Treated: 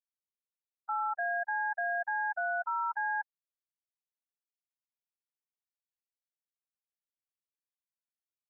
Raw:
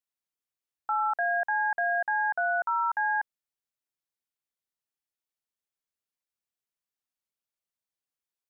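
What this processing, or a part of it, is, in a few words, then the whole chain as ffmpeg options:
low-bitrate web radio: -af "afftfilt=real='re*gte(hypot(re,im),0.1)':imag='im*gte(hypot(re,im),0.1)':win_size=1024:overlap=0.75,dynaudnorm=f=360:g=9:m=1.88,alimiter=limit=0.0794:level=0:latency=1:release=47,volume=0.668" -ar 48000 -c:a libmp3lame -b:a 48k

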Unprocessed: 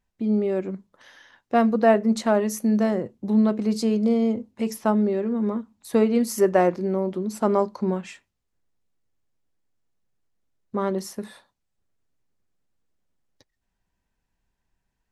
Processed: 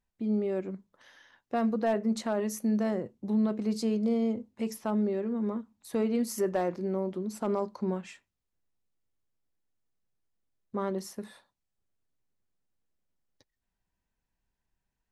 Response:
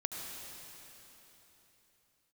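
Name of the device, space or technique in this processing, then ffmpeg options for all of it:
clipper into limiter: -af "asoftclip=type=hard:threshold=0.335,alimiter=limit=0.211:level=0:latency=1:release=19,volume=0.473"

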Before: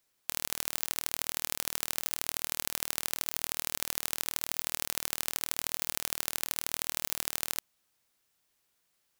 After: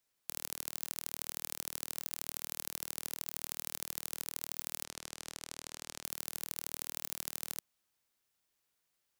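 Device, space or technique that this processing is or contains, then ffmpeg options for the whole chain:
one-band saturation: -filter_complex "[0:a]acrossover=split=300|4200[s0][s1][s2];[s1]asoftclip=type=tanh:threshold=0.0398[s3];[s0][s3][s2]amix=inputs=3:normalize=0,asplit=3[s4][s5][s6];[s4]afade=t=out:st=4.83:d=0.02[s7];[s5]lowpass=8100,afade=t=in:st=4.83:d=0.02,afade=t=out:st=6.02:d=0.02[s8];[s6]afade=t=in:st=6.02:d=0.02[s9];[s7][s8][s9]amix=inputs=3:normalize=0,volume=0.501"

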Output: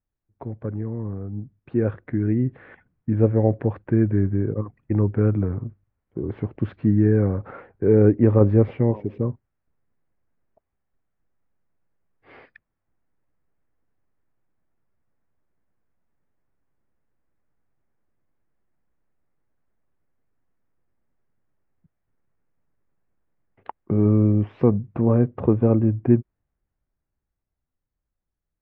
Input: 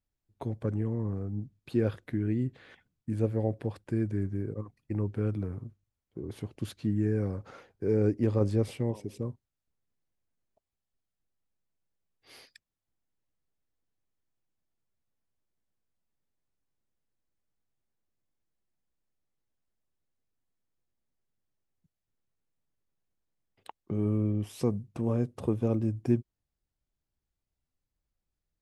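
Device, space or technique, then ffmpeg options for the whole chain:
action camera in a waterproof case: -af "lowpass=f=2000:w=0.5412,lowpass=f=2000:w=1.3066,dynaudnorm=f=140:g=31:m=2.99,volume=1.19" -ar 22050 -c:a aac -b:a 96k

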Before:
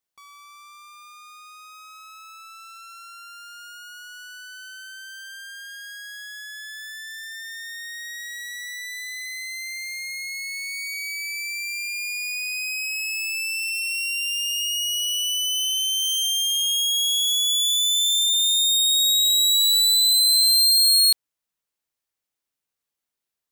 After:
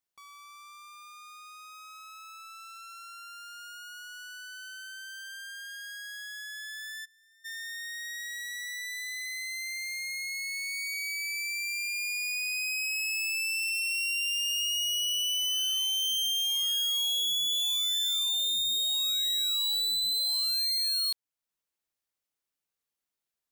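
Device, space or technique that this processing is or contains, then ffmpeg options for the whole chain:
limiter into clipper: -filter_complex "[0:a]alimiter=limit=0.126:level=0:latency=1:release=433,asoftclip=type=hard:threshold=0.0668,asplit=3[s0][s1][s2];[s0]afade=t=out:st=7.04:d=0.02[s3];[s1]agate=range=0.0224:threshold=0.0794:ratio=3:detection=peak,afade=t=in:st=7.04:d=0.02,afade=t=out:st=7.44:d=0.02[s4];[s2]afade=t=in:st=7.44:d=0.02[s5];[s3][s4][s5]amix=inputs=3:normalize=0,volume=0.668"

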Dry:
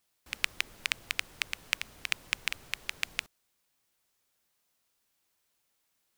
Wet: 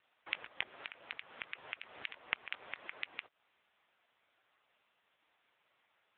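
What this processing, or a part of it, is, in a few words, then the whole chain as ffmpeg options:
voicemail: -filter_complex "[0:a]asettb=1/sr,asplit=3[s0][s1][s2];[s0]atrim=end=0.974[s3];[s1]atrim=start=0.97:end=2.66,asetpts=PTS-STARTPTS,afade=t=in:d=0.004:c=qsin,afade=t=out:st=1.686:d=0.004:c=qsin,equalizer=f=110:t=o:w=0.49:g=2.5[s4];[s2]atrim=start=2.656[s5];[s3][s4]acrossfade=d=0.004:c1=hsin:c2=qsin[s6];[s6][s5]acrossfade=d=0.004:c1=qsin:c2=hsin,highpass=440,lowpass=3100,acompressor=threshold=0.0112:ratio=10,volume=5.31" -ar 8000 -c:a libopencore_amrnb -b:a 5900

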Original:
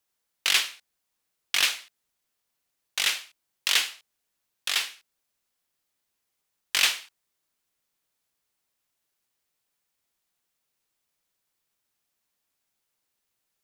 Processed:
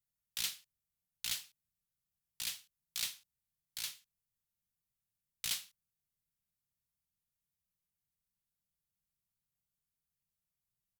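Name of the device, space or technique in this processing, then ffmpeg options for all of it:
nightcore: -af "firequalizer=gain_entry='entry(140,0);entry(220,-21);entry(10000,-10)':delay=0.05:min_phase=1,asetrate=54684,aresample=44100,volume=1.26"

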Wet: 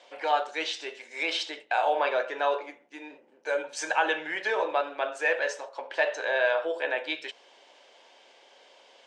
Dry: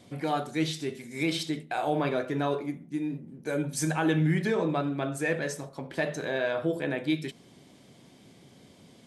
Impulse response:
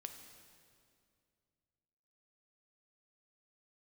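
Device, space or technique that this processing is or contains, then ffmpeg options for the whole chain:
phone speaker on a table: -af "highpass=f=490:w=0.5412,highpass=f=490:w=1.3066,equalizer=f=550:t=q:w=4:g=5,equalizer=f=900:t=q:w=4:g=8,equalizer=f=1600:t=q:w=4:g=6,equalizer=f=2800:t=q:w=4:g=8,lowpass=f=6700:w=0.5412,lowpass=f=6700:w=1.3066,volume=1.12"

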